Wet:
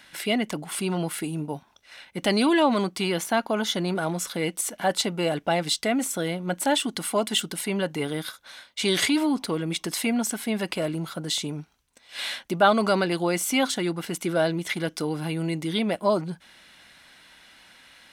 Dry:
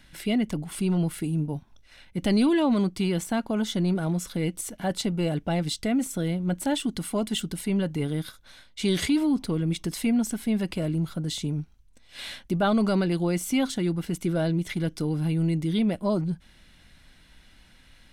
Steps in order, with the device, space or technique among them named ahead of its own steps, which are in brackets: filter by subtraction (in parallel: low-pass 890 Hz 12 dB/octave + polarity flip); 3.13–3.75 s: on the sum: band-stop 8 kHz, Q 5.4; trim +6 dB

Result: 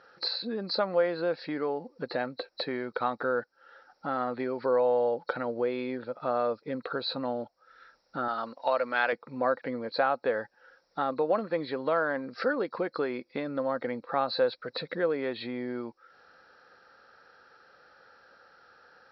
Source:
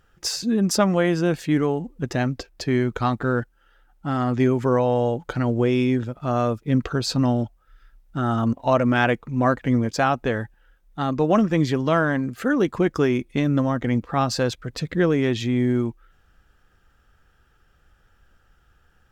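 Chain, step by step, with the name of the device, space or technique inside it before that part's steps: hearing aid with frequency lowering (knee-point frequency compression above 3.8 kHz 4:1; compression 2.5:1, threshold -39 dBFS, peak gain reduction 17 dB; cabinet simulation 350–5000 Hz, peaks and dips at 350 Hz -3 dB, 520 Hz +9 dB, 860 Hz +3 dB, 1.4 kHz +4 dB, 3 kHz -9 dB); 8.28–9.13 s: tilt EQ +3.5 dB/octave; trim +6 dB

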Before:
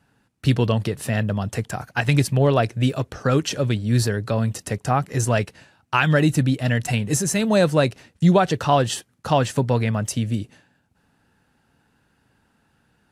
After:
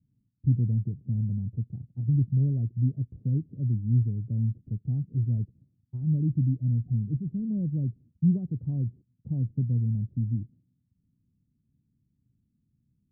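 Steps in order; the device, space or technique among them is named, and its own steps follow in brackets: the neighbour's flat through the wall (low-pass 250 Hz 24 dB/octave; peaking EQ 120 Hz +5 dB 0.72 oct); trim -7.5 dB

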